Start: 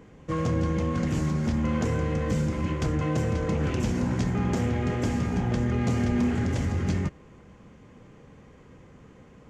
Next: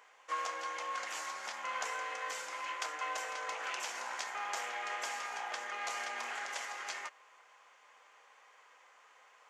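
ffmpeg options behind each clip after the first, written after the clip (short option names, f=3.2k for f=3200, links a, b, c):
-af "highpass=f=800:w=0.5412,highpass=f=800:w=1.3066"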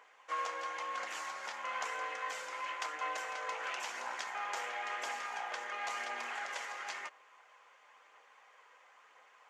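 -af "bass=f=250:g=1,treble=f=4k:g=-5,aphaser=in_gain=1:out_gain=1:delay=2.3:decay=0.22:speed=0.98:type=triangular"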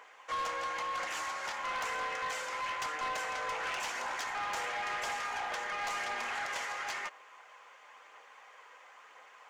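-af "asoftclip=type=tanh:threshold=-37.5dB,volume=6.5dB"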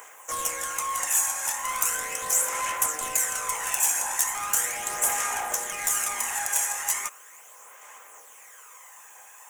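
-af "aphaser=in_gain=1:out_gain=1:delay=1.2:decay=0.44:speed=0.38:type=sinusoidal,aexciter=amount=9.5:drive=10:freq=6.9k,volume=2dB"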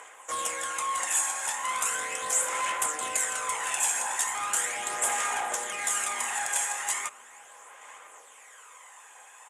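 -filter_complex "[0:a]highpass=130,equalizer=f=160:t=q:w=4:g=-7,equalizer=f=3.5k:t=q:w=4:g=4,equalizer=f=5.9k:t=q:w=4:g=-9,lowpass=f=9.5k:w=0.5412,lowpass=f=9.5k:w=1.3066,asplit=2[a][b];[b]adelay=991.3,volume=-20dB,highshelf=f=4k:g=-22.3[c];[a][c]amix=inputs=2:normalize=0"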